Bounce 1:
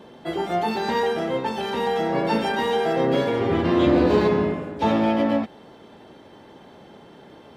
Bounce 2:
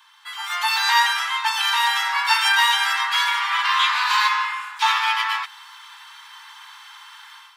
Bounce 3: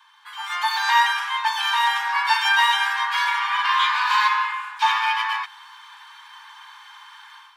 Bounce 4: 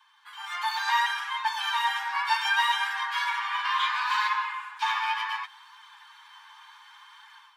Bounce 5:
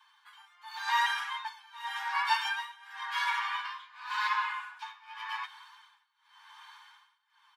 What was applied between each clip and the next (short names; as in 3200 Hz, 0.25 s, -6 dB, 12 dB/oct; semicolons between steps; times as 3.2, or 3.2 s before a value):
steep high-pass 950 Hz 72 dB/oct; high shelf 4300 Hz +7 dB; AGC gain up to 11.5 dB
high shelf 3500 Hz -9 dB; notch comb 670 Hz; gain +2 dB
flange 0.69 Hz, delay 4.4 ms, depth 7.3 ms, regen +36%; gain -3 dB
tremolo 0.9 Hz, depth 96%; resonator 730 Hz, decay 0.35 s, mix 70%; speakerphone echo 0.19 s, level -24 dB; gain +8.5 dB